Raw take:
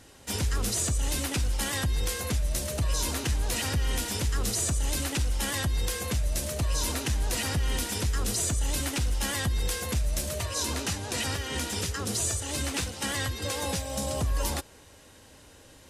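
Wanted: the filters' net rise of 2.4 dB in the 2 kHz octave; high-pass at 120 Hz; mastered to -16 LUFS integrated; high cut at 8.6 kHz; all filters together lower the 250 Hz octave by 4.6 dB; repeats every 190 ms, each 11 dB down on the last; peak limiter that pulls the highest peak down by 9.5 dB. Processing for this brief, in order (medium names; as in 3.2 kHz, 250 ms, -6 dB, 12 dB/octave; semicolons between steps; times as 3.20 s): high-pass 120 Hz; low-pass 8.6 kHz; peaking EQ 250 Hz -5.5 dB; peaking EQ 2 kHz +3 dB; peak limiter -28 dBFS; feedback delay 190 ms, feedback 28%, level -11 dB; trim +20 dB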